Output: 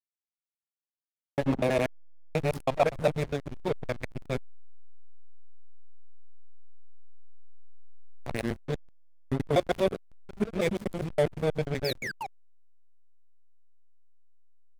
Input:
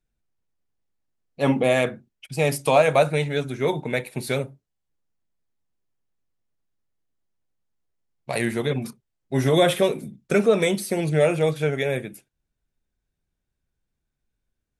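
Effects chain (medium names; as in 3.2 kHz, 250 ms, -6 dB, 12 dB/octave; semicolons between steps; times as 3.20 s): time reversed locally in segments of 81 ms; painted sound fall, 11.84–12.27 s, 720–5500 Hz -23 dBFS; trance gate "xx.x.xxxx" 161 bpm -12 dB; on a send: delay 409 ms -19.5 dB; on the sum: hysteresis with a dead band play -18 dBFS; trim -4.5 dB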